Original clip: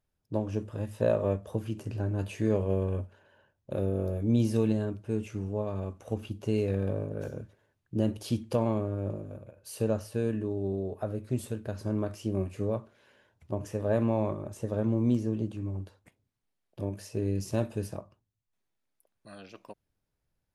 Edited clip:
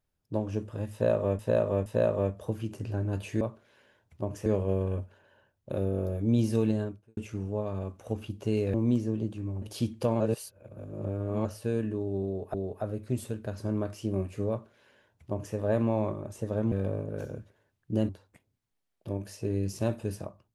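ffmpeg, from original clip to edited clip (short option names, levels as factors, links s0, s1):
-filter_complex "[0:a]asplit=13[s0][s1][s2][s3][s4][s5][s6][s7][s8][s9][s10][s11][s12];[s0]atrim=end=1.392[s13];[s1]atrim=start=0.918:end=1.392[s14];[s2]atrim=start=0.918:end=2.472[s15];[s3]atrim=start=12.708:end=13.762[s16];[s4]atrim=start=2.468:end=5.18,asetpts=PTS-STARTPTS,afade=t=out:st=2.372:d=0.34:c=qua[s17];[s5]atrim=start=5.18:end=6.752,asetpts=PTS-STARTPTS,afade=t=in:d=0.004:c=hsin[s18];[s6]atrim=start=14.928:end=15.812[s19];[s7]atrim=start=8.118:end=8.702[s20];[s8]atrim=start=8.698:end=9.952,asetpts=PTS-STARTPTS,areverse[s21];[s9]atrim=start=9.948:end=11.042[s22];[s10]atrim=start=10.748:end=14.932[s23];[s11]atrim=start=6.748:end=8.122[s24];[s12]atrim=start=15.808[s25];[s13][s14]acrossfade=d=0.004:c1=hsin:c2=hsin[s26];[s26][s15]acrossfade=d=0.004:c1=hsin:c2=hsin[s27];[s27][s16]acrossfade=d=0.004:c1=hsin:c2=hsin[s28];[s17][s18]concat=n=2:v=0:a=1[s29];[s28][s29]acrossfade=d=0.004:c1=hsin:c2=hsin[s30];[s30][s19]acrossfade=d=0.004:c1=hsin:c2=hsin[s31];[s31][s20]acrossfade=d=0.004:c1=hsin:c2=hsin[s32];[s32][s21]acrossfade=d=0.004:c1=hsin:c2=hsin[s33];[s33][s22]acrossfade=d=0.004:c1=hsin:c2=hsin[s34];[s34][s23]acrossfade=d=0.004:c1=hsin:c2=hsin[s35];[s35][s24]acrossfade=d=0.004:c1=hsin:c2=hsin[s36];[s36][s25]acrossfade=d=0.004:c1=hsin:c2=hsin"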